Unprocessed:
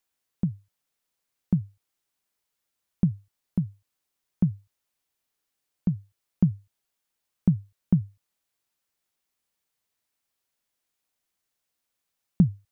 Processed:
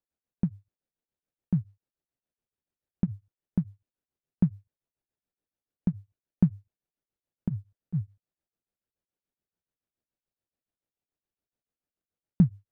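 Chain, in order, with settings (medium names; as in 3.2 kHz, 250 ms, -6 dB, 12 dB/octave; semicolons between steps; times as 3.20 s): median filter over 41 samples; tremolo of two beating tones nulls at 7 Hz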